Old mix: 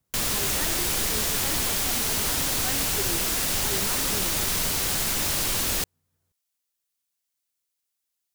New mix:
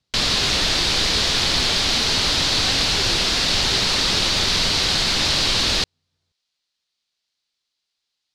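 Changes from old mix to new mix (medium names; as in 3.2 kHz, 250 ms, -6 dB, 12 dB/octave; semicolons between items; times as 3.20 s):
background +6.0 dB; master: add resonant low-pass 4.3 kHz, resonance Q 2.7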